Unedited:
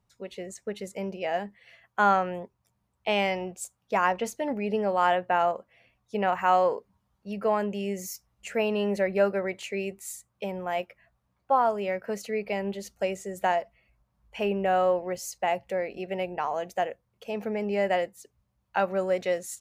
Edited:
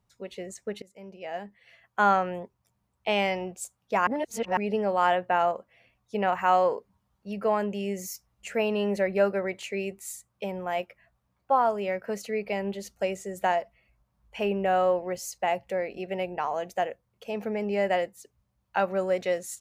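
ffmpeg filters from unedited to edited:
-filter_complex "[0:a]asplit=4[s0][s1][s2][s3];[s0]atrim=end=0.82,asetpts=PTS-STARTPTS,afade=t=out:st=0.816:d=0.004:c=hsin:silence=0.0891251[s4];[s1]atrim=start=0.82:end=4.072,asetpts=PTS-STARTPTS,afade=t=in:d=1.19:silence=0.0891251[s5];[s2]atrim=start=4.068:end=4.572,asetpts=PTS-STARTPTS,areverse[s6];[s3]atrim=start=4.568[s7];[s4][s5]concat=n=2:v=0:a=1[s8];[s8][s6]acrossfade=d=0.004:c1=hsin:c2=hsin[s9];[s9][s7]acrossfade=d=0.004:c1=hsin:c2=hsin"

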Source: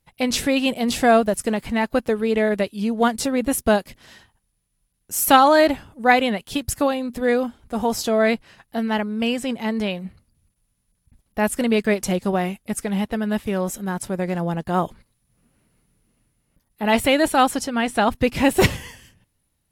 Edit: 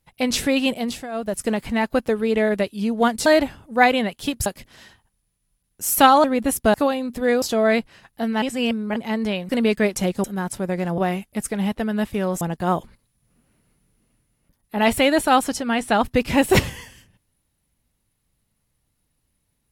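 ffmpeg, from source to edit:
-filter_complex "[0:a]asplit=14[s0][s1][s2][s3][s4][s5][s6][s7][s8][s9][s10][s11][s12][s13];[s0]atrim=end=1.07,asetpts=PTS-STARTPTS,afade=t=out:st=0.72:d=0.35:silence=0.11885[s14];[s1]atrim=start=1.07:end=1.11,asetpts=PTS-STARTPTS,volume=0.119[s15];[s2]atrim=start=1.11:end=3.262,asetpts=PTS-STARTPTS,afade=t=in:d=0.35:silence=0.11885[s16];[s3]atrim=start=5.538:end=6.742[s17];[s4]atrim=start=3.758:end=5.542[s18];[s5]atrim=start=3.258:end=3.762[s19];[s6]atrim=start=6.738:end=7.422[s20];[s7]atrim=start=7.968:end=8.972[s21];[s8]atrim=start=8.968:end=9.512,asetpts=PTS-STARTPTS,areverse[s22];[s9]atrim=start=9.508:end=10.042[s23];[s10]atrim=start=11.558:end=12.312[s24];[s11]atrim=start=13.738:end=14.482[s25];[s12]atrim=start=12.308:end=13.742[s26];[s13]atrim=start=14.478[s27];[s14][s15][s16]concat=n=3:v=0:a=1[s28];[s28][s17]acrossfade=d=0.004:c1=hsin:c2=hsin[s29];[s29][s18]acrossfade=d=0.004:c1=hsin:c2=hsin[s30];[s30][s19]acrossfade=d=0.004:c1=hsin:c2=hsin[s31];[s31][s20]acrossfade=d=0.004:c1=hsin:c2=hsin[s32];[s32][s21]acrossfade=d=0.004:c1=hsin:c2=hsin[s33];[s33][s22]acrossfade=d=0.004:c1=hsin:c2=hsin[s34];[s34][s23]acrossfade=d=0.004:c1=hsin:c2=hsin[s35];[s35][s24]acrossfade=d=0.004:c1=hsin:c2=hsin[s36];[s36][s25]acrossfade=d=0.004:c1=hsin:c2=hsin[s37];[s37][s26]acrossfade=d=0.004:c1=hsin:c2=hsin[s38];[s38][s27]acrossfade=d=0.004:c1=hsin:c2=hsin"

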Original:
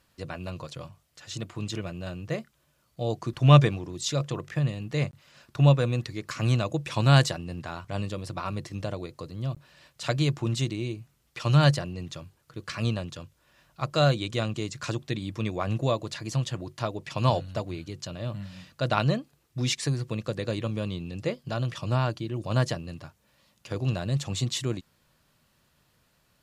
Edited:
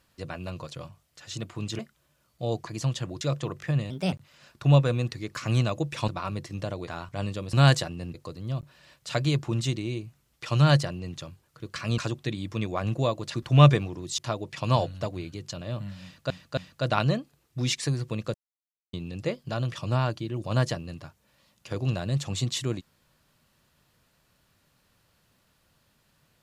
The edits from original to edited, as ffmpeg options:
-filter_complex "[0:a]asplit=17[s0][s1][s2][s3][s4][s5][s6][s7][s8][s9][s10][s11][s12][s13][s14][s15][s16];[s0]atrim=end=1.792[s17];[s1]atrim=start=2.368:end=3.252[s18];[s2]atrim=start=16.178:end=16.722[s19];[s3]atrim=start=4.088:end=4.784[s20];[s4]atrim=start=4.78:end=5.06,asetpts=PTS-STARTPTS,asetrate=55566,aresample=44100[s21];[s5]atrim=start=5.056:end=7.022[s22];[s6]atrim=start=8.288:end=9.082[s23];[s7]atrim=start=7.628:end=8.292[s24];[s8]atrim=start=7.018:end=7.632[s25];[s9]atrim=start=9.078:end=12.922[s26];[s10]atrim=start=14.818:end=16.182[s27];[s11]atrim=start=3.248:end=4.092[s28];[s12]atrim=start=16.718:end=18.842[s29];[s13]atrim=start=18.568:end=18.842[s30];[s14]atrim=start=18.568:end=20.34,asetpts=PTS-STARTPTS,afade=t=out:st=1.768:d=0.004:c=hsin[s31];[s15]atrim=start=20.34:end=20.93,asetpts=PTS-STARTPTS,volume=0[s32];[s16]atrim=start=20.93,asetpts=PTS-STARTPTS,afade=t=in:d=0.004:c=hsin[s33];[s17][s18]acrossfade=d=0.004:c1=hsin:c2=hsin[s34];[s34][s19]acrossfade=d=0.004:c1=hsin:c2=hsin[s35];[s35][s20]acrossfade=d=0.004:c1=hsin:c2=hsin[s36];[s36][s21]acrossfade=d=0.004:c1=hsin:c2=hsin[s37];[s37][s22]acrossfade=d=0.004:c1=hsin:c2=hsin[s38];[s38][s23]acrossfade=d=0.004:c1=hsin:c2=hsin[s39];[s39][s24]acrossfade=d=0.004:c1=hsin:c2=hsin[s40];[s40][s25]acrossfade=d=0.004:c1=hsin:c2=hsin[s41];[s41][s26]acrossfade=d=0.004:c1=hsin:c2=hsin[s42];[s42][s27]acrossfade=d=0.004:c1=hsin:c2=hsin[s43];[s43][s28]acrossfade=d=0.004:c1=hsin:c2=hsin[s44];[s44][s29]acrossfade=d=0.004:c1=hsin:c2=hsin[s45];[s45][s30]acrossfade=d=0.004:c1=hsin:c2=hsin[s46];[s31][s32][s33]concat=n=3:v=0:a=1[s47];[s46][s47]acrossfade=d=0.004:c1=hsin:c2=hsin"

